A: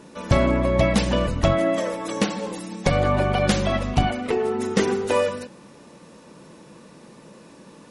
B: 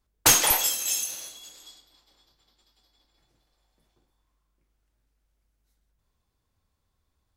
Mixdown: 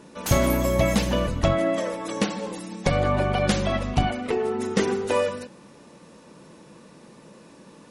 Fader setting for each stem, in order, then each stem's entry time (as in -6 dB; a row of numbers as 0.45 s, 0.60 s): -2.0 dB, -13.0 dB; 0.00 s, 0.00 s